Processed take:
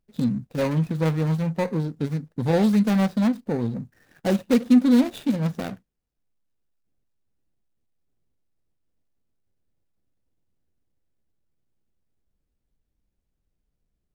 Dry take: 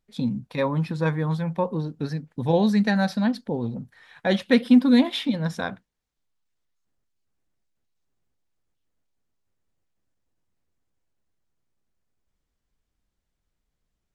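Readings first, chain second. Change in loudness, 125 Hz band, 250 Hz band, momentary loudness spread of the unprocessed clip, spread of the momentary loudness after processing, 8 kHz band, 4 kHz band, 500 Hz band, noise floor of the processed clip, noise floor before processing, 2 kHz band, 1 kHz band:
+0.5 dB, +2.0 dB, +1.0 dB, 13 LU, 11 LU, n/a, -6.0 dB, -0.5 dB, -78 dBFS, -80 dBFS, -5.5 dB, -2.5 dB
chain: median filter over 41 samples; high shelf 4500 Hz +8 dB; in parallel at -2 dB: limiter -17.5 dBFS, peak gain reduction 9.5 dB; on the sum: gain -2.5 dB

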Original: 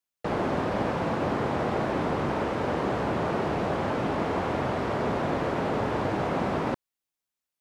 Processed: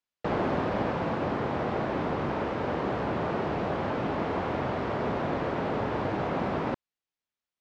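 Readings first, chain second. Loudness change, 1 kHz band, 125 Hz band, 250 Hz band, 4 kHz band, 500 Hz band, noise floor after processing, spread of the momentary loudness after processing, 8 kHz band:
-2.0 dB, -2.0 dB, -2.0 dB, -2.0 dB, -3.0 dB, -2.0 dB, under -85 dBFS, 2 LU, n/a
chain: LPF 4800 Hz 12 dB/oct; vocal rider 2 s; gain -2 dB

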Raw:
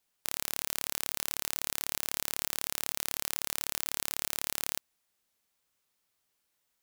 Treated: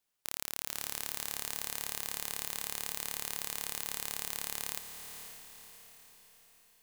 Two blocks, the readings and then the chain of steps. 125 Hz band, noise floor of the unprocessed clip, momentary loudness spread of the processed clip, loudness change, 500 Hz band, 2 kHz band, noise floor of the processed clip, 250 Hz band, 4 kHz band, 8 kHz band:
-2.5 dB, -79 dBFS, 14 LU, -3.5 dB, -3.5 dB, -3.0 dB, -81 dBFS, -4.0 dB, -3.5 dB, -3.0 dB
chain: diffused feedback echo 0.529 s, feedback 49%, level -8 dB; gain -4 dB

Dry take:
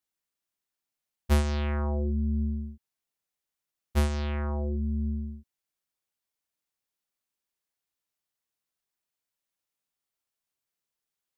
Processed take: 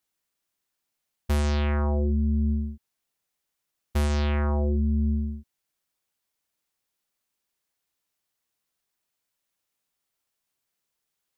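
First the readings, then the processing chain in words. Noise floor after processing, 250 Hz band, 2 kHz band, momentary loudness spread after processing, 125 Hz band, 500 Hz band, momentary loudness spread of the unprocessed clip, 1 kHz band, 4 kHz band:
-82 dBFS, +4.0 dB, +3.0 dB, 9 LU, +3.5 dB, +3.5 dB, 10 LU, +3.5 dB, +2.5 dB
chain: limiter -24.5 dBFS, peak gain reduction 9.5 dB; gain +6 dB

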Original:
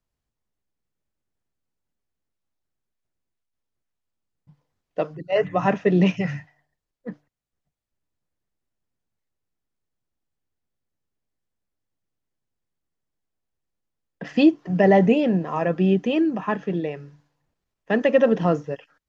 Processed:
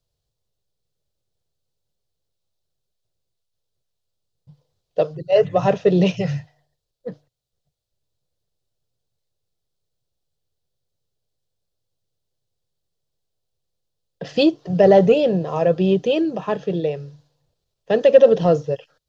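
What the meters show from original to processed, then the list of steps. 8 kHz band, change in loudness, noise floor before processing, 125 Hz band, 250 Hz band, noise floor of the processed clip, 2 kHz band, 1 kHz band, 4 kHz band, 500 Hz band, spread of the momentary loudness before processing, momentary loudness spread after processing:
n/a, +3.0 dB, -83 dBFS, +2.0 dB, -1.0 dB, -78 dBFS, -3.0 dB, +1.0 dB, +5.5 dB, +6.0 dB, 19 LU, 16 LU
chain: graphic EQ 125/250/500/1000/2000/4000 Hz +7/-12/+8/-5/-10/+9 dB; in parallel at -10 dB: soft clip -12.5 dBFS, distortion -13 dB; on the sum: gain +1.5 dB

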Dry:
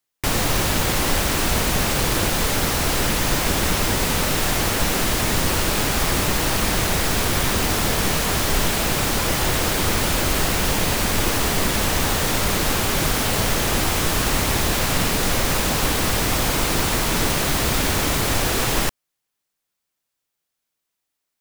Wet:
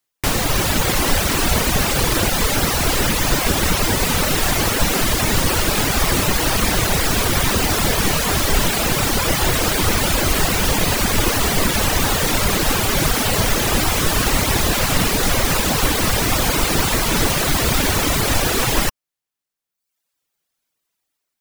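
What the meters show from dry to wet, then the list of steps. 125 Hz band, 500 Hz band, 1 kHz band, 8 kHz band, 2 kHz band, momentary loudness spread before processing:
+2.5 dB, +2.5 dB, +2.5 dB, +2.5 dB, +2.5 dB, 0 LU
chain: reverb removal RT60 0.98 s; AGC gain up to 3 dB; gain +2.5 dB

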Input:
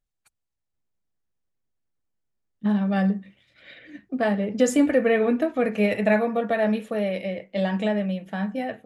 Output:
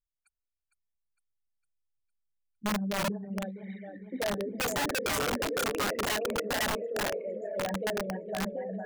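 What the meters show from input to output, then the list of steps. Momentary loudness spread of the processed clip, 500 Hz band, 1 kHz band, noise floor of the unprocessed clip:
8 LU, -9.0 dB, -3.0 dB, -81 dBFS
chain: formant sharpening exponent 3; split-band echo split 390 Hz, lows 0.326 s, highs 0.457 s, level -6 dB; wrapped overs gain 16.5 dB; gain -8.5 dB

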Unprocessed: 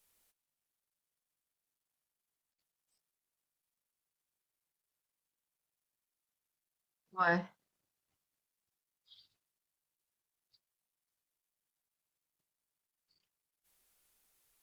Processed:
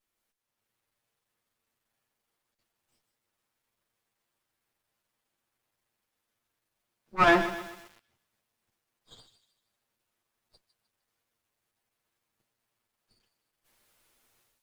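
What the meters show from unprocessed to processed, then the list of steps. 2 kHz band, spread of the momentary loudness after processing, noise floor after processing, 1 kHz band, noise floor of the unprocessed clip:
+8.5 dB, 18 LU, -85 dBFS, +9.5 dB, under -85 dBFS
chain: minimum comb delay 8.7 ms; high shelf 4200 Hz -8 dB; AGC gain up to 16.5 dB; thin delay 0.153 s, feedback 37%, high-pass 3800 Hz, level -9 dB; lo-fi delay 0.128 s, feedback 55%, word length 6-bit, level -12 dB; gain -4.5 dB

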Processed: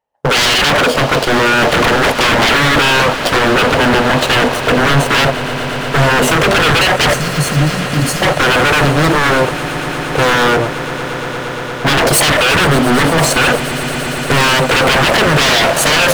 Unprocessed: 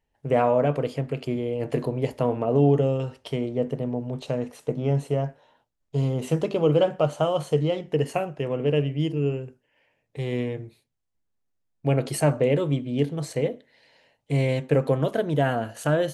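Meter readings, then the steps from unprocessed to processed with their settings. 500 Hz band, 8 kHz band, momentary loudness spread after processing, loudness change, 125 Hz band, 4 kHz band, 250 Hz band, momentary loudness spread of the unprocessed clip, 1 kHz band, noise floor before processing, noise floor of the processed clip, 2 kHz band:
+9.5 dB, +24.5 dB, 9 LU, +13.5 dB, +8.5 dB, +27.5 dB, +11.0 dB, 9 LU, +19.5 dB, -75 dBFS, -21 dBFS, +27.5 dB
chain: HPF 250 Hz 6 dB/oct; sample leveller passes 5; spectral delete 7.13–8.22, 320–4100 Hz; band shelf 810 Hz +11 dB; in parallel at -2 dB: limiter -4 dBFS, peak gain reduction 8 dB; on the sum: wavefolder -8 dBFS; on a send: swelling echo 0.116 s, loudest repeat 8, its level -18 dB; on the sum: gain +1.5 dB

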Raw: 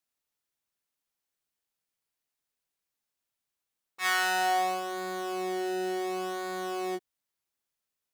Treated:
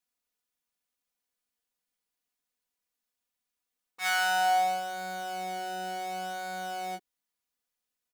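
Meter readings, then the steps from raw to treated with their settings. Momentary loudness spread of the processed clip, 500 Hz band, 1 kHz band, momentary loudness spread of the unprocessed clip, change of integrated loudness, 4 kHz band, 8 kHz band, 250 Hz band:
11 LU, -6.5 dB, +2.0 dB, 9 LU, 0.0 dB, +0.5 dB, -0.5 dB, -11.0 dB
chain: comb 4.1 ms, depth 77%; gain -2.5 dB

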